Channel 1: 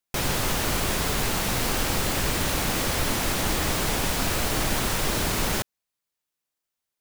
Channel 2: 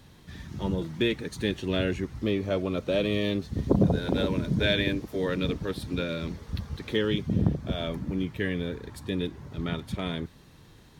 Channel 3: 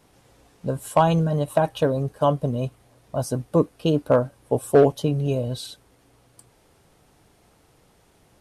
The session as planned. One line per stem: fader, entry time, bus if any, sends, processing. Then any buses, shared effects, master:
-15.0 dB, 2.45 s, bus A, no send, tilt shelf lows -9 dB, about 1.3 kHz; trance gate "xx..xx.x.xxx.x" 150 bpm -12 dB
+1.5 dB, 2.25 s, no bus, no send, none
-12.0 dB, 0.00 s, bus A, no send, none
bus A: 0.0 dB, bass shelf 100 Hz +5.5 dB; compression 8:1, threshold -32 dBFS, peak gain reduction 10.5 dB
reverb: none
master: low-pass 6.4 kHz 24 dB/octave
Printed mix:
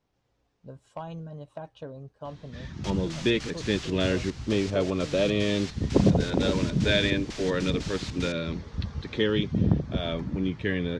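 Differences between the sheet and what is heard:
stem 1: entry 2.45 s -> 2.70 s; stem 3 -12.0 dB -> -19.0 dB

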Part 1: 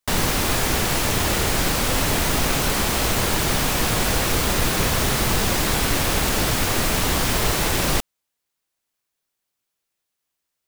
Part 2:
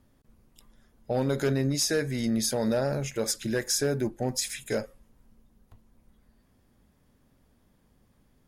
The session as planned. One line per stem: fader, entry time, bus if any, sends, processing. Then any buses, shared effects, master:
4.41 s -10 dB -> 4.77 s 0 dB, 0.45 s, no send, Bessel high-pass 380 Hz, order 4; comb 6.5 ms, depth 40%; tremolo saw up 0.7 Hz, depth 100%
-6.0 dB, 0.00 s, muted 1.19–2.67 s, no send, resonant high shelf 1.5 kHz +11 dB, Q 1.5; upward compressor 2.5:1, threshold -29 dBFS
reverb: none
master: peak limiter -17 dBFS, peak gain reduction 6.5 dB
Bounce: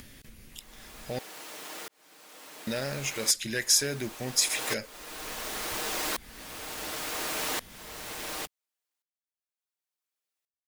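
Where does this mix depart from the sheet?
stem 1 -10.0 dB -> -18.0 dB; master: missing peak limiter -17 dBFS, peak gain reduction 6.5 dB

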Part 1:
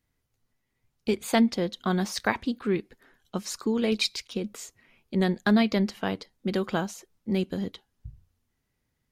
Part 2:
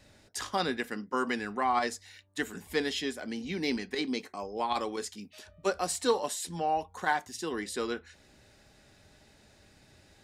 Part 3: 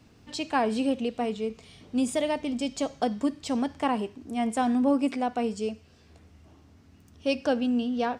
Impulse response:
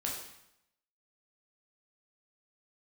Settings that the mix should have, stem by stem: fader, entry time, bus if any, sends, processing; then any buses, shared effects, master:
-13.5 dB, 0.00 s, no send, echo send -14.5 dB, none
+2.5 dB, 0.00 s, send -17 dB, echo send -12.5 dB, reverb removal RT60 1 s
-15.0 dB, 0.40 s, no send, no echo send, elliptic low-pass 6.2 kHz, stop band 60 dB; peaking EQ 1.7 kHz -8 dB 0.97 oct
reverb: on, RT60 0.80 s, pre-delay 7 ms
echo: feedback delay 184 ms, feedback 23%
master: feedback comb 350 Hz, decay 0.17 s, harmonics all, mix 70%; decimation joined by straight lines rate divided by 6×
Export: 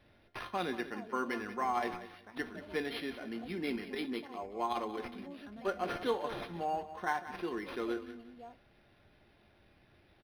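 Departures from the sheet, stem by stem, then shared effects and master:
stem 1 -13.5 dB -> -21.0 dB; stem 2: missing reverb removal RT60 1 s

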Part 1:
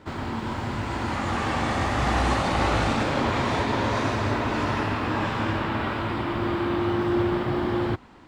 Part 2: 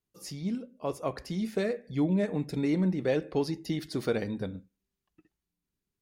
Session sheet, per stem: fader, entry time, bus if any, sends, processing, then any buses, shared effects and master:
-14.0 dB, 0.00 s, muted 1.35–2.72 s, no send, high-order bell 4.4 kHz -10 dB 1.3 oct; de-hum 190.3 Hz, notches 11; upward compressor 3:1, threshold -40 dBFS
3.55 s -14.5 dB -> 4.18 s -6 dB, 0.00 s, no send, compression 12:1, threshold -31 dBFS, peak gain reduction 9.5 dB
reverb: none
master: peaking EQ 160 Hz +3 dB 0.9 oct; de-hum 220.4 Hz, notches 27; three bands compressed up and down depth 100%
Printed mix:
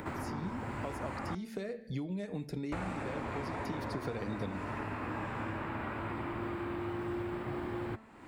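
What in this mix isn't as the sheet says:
stem 2 -14.5 dB -> -7.0 dB; master: missing peaking EQ 160 Hz +3 dB 0.9 oct

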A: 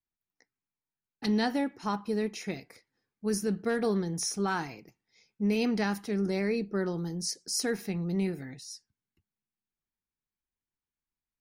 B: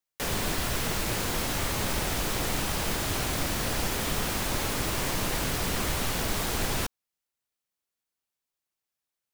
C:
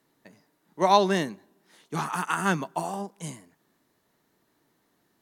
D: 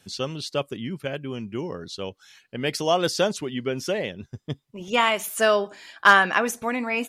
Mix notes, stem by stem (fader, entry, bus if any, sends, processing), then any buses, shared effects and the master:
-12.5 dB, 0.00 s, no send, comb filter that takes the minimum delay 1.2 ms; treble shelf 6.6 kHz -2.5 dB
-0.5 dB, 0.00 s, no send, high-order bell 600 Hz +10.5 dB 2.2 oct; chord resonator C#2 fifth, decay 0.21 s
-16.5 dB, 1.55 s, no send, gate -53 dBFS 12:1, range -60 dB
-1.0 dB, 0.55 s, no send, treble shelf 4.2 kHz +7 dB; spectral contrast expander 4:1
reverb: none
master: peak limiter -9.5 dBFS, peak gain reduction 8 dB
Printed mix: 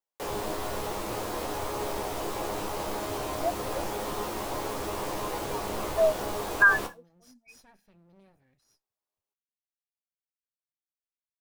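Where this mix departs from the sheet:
stem A -12.5 dB -> -24.0 dB; stem C: muted

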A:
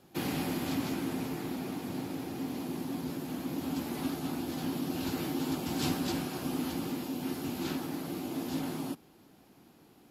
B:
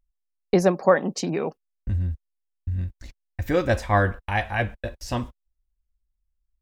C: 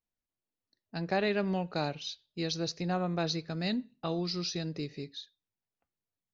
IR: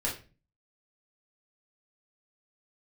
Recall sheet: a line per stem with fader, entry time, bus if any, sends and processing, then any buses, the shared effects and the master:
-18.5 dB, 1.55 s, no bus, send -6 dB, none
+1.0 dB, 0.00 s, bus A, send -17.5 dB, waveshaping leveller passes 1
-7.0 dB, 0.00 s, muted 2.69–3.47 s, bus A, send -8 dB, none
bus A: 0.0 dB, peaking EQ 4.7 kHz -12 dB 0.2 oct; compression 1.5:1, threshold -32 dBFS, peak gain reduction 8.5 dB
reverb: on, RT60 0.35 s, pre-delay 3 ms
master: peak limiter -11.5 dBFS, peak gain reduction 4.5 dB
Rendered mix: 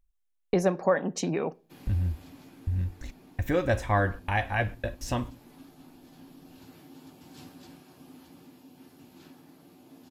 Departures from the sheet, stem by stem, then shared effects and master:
stem B: missing waveshaping leveller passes 1; stem C: muted; reverb return -9.0 dB

